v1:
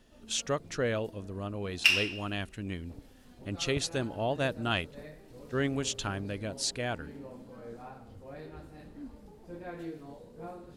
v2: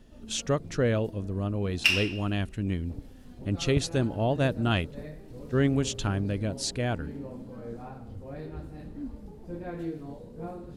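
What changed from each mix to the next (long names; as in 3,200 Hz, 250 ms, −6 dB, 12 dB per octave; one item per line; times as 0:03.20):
master: add low-shelf EQ 400 Hz +10 dB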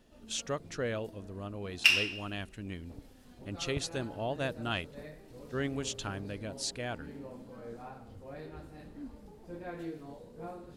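speech −4.0 dB
master: add low-shelf EQ 400 Hz −10 dB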